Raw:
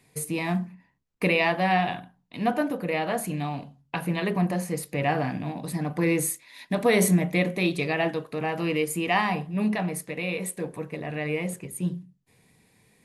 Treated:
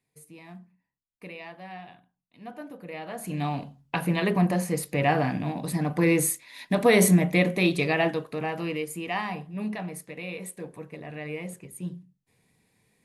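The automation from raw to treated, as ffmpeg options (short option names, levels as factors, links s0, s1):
-af "volume=1.26,afade=t=in:st=2.37:d=0.81:silence=0.316228,afade=t=in:st=3.18:d=0.28:silence=0.281838,afade=t=out:st=7.93:d=0.94:silence=0.375837"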